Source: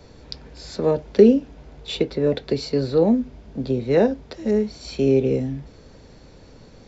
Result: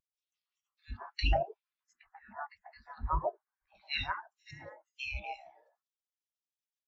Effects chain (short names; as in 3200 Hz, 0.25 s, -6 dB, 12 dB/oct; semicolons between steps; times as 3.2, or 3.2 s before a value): spectral gate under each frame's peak -30 dB weak; 1.93–3.75 resonant high shelf 2400 Hz -7.5 dB, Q 1.5; three bands offset in time highs, lows, mids 40/140 ms, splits 340/1800 Hz; spectral expander 2.5:1; gain +5.5 dB